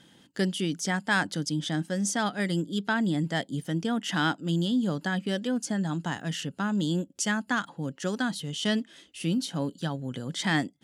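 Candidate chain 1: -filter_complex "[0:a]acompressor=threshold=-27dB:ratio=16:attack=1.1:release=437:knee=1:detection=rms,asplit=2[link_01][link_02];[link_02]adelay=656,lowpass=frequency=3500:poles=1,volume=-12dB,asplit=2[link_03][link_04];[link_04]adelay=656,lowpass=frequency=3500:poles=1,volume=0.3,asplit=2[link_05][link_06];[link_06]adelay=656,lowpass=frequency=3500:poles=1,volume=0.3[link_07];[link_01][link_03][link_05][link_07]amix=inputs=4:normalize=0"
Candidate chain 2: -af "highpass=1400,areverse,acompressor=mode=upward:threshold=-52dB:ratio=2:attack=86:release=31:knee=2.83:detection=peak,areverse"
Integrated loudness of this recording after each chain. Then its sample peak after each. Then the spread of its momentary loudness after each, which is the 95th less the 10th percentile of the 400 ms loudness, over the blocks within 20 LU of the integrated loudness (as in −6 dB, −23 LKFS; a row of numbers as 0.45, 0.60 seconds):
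−35.0, −35.0 LKFS; −22.0, −14.5 dBFS; 4, 11 LU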